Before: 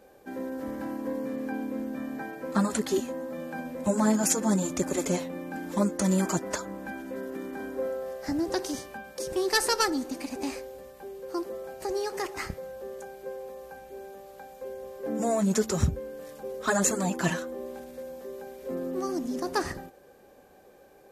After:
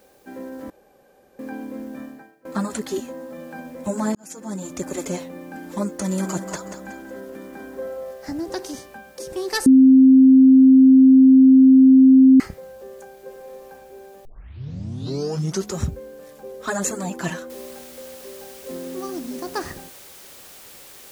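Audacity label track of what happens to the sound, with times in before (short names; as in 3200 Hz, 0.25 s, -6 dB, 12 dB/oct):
0.700000	1.390000	room tone
2.020000	2.450000	fade out quadratic, to -21 dB
4.150000	4.890000	fade in
5.940000	8.110000	feedback echo 0.185 s, feedback 35%, level -8.5 dB
9.660000	12.400000	bleep 263 Hz -7 dBFS
13.240000	13.710000	reverb throw, RT60 1 s, DRR 0.5 dB
14.250000	14.250000	tape start 1.50 s
17.500000	17.500000	noise floor step -62 dB -44 dB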